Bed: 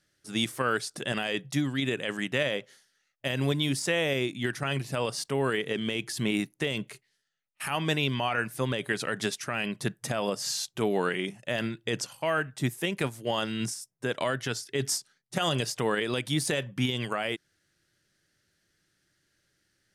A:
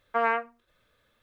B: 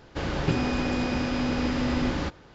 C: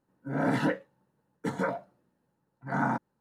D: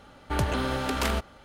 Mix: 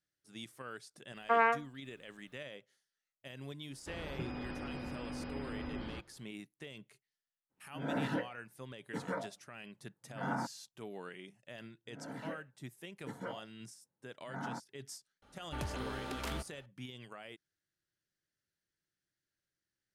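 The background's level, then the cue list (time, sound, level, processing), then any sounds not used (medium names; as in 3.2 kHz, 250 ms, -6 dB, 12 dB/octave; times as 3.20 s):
bed -19 dB
1.15 s: add A -2.5 dB
3.71 s: add B -16 dB + spectral gate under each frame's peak -30 dB strong
7.49 s: add C -8.5 dB, fades 0.02 s
11.62 s: add C -13.5 dB + fade-in on the opening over 0.92 s
15.22 s: add D -13 dB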